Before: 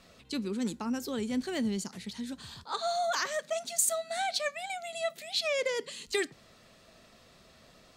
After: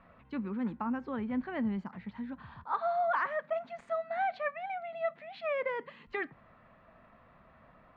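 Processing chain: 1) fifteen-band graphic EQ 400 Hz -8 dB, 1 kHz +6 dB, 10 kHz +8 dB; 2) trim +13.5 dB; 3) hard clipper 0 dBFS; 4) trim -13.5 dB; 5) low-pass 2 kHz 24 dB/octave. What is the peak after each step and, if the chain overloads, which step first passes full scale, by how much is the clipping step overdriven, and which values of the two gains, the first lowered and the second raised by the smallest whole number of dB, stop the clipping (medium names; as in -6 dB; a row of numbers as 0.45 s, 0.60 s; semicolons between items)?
-9.0 dBFS, +4.5 dBFS, 0.0 dBFS, -13.5 dBFS, -20.0 dBFS; step 2, 4.5 dB; step 2 +8.5 dB, step 4 -8.5 dB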